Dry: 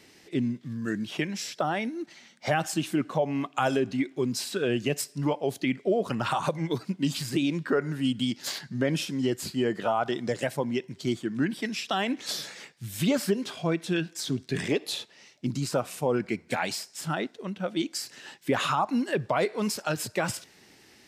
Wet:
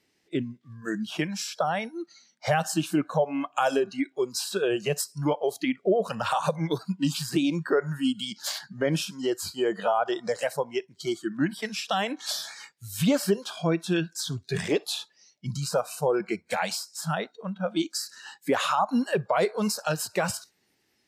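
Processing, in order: spectral noise reduction 18 dB; dynamic bell 2.3 kHz, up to -3 dB, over -40 dBFS, Q 1.1; trim +2.5 dB

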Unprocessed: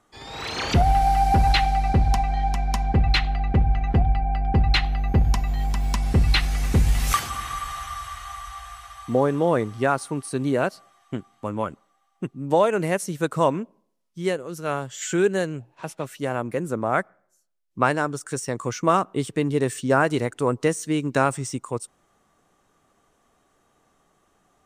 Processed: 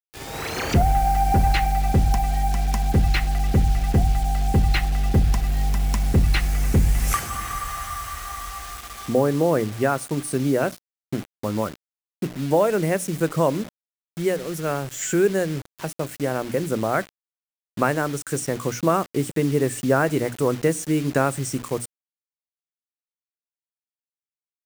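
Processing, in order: in parallel at +0.5 dB: compression 10:1, threshold -29 dBFS, peak gain reduction 16 dB; on the sum: peaking EQ 3.7 kHz -10 dB 0.95 oct; hum notches 60/120/180/240/300 Hz; on a send at -21.5 dB: reverberation RT60 0.40 s, pre-delay 6 ms; on the sum: word length cut 6-bit, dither none; peaking EQ 1 kHz -5 dB 0.85 oct

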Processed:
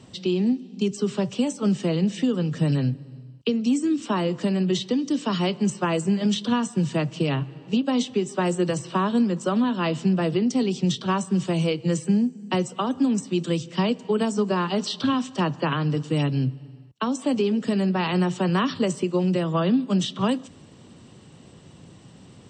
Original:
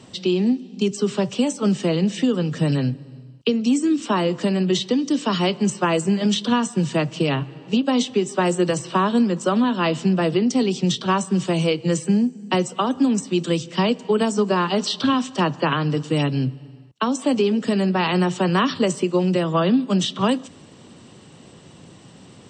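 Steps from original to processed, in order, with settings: bass shelf 150 Hz +8 dB; trim -5 dB

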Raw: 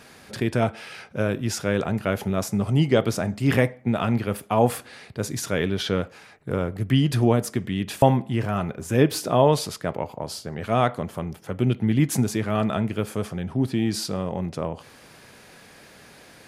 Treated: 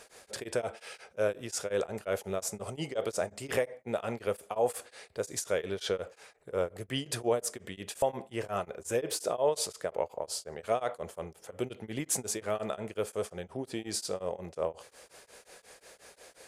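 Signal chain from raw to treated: graphic EQ 125/250/500/8000 Hz -11/-9/+9/+10 dB; peak limiter -11 dBFS, peak gain reduction 8.5 dB; tremolo of two beating tones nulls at 5.6 Hz; trim -6 dB

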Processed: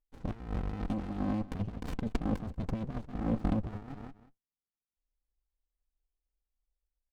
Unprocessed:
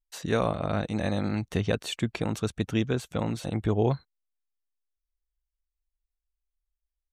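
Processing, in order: local Wiener filter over 25 samples; high-order bell 580 Hz +10 dB; comb 3.9 ms, depth 76%; feedback delay 185 ms, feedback 18%, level -22.5 dB; compressor with a negative ratio -27 dBFS, ratio -1; 1.59–3.65 s: bass shelf 180 Hz +11 dB; sliding maximum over 65 samples; trim -9 dB

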